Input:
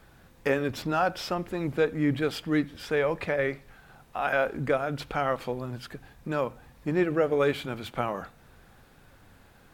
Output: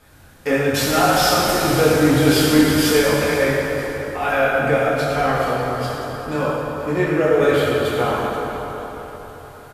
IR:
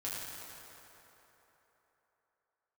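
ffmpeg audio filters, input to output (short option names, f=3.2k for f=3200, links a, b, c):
-filter_complex "[0:a]asettb=1/sr,asplit=3[a][b][c];[a]atrim=end=0.744[d];[b]atrim=start=0.74:end=3,asetpts=PTS-STARTPTS,afade=t=in:d=0.004:c=qsin,afade=t=out:st=2.256:d=0.004:c=qsin,aeval=exprs='val(0)+0.5*0.0398*sgn(val(0))':c=same[e];[c]atrim=start=2.996[f];[d][e]acrossfade=d=0.004:c1=hsin:c2=qsin[g];[g][f]acrossfade=d=0.004:c1=qsin:c2=hsin,highshelf=f=4.8k:g=7.5,asplit=5[h][i][j][k][l];[i]adelay=477,afreqshift=-74,volume=-15.5dB[m];[j]adelay=954,afreqshift=-148,volume=-22.8dB[n];[k]adelay=1431,afreqshift=-222,volume=-30.2dB[o];[l]adelay=1908,afreqshift=-296,volume=-37.5dB[p];[h][m][n][o][p]amix=inputs=5:normalize=0[q];[1:a]atrim=start_sample=2205,asetrate=41454,aresample=44100[r];[q][r]afir=irnorm=-1:irlink=0,volume=6dB" -ar 32000 -c:a libvorbis -b:a 64k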